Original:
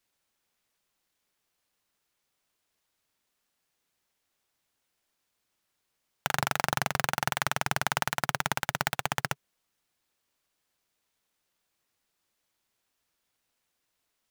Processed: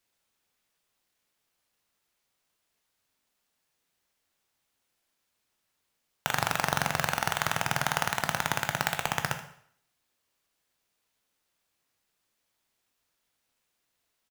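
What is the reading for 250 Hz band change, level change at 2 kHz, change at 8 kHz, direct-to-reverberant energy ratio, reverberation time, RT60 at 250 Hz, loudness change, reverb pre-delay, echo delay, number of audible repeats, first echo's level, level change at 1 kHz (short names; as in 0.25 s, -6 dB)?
+1.0 dB, +1.0 dB, +1.0 dB, 6.0 dB, 0.60 s, 0.65 s, +1.0 dB, 9 ms, 78 ms, 1, -13.5 dB, +1.0 dB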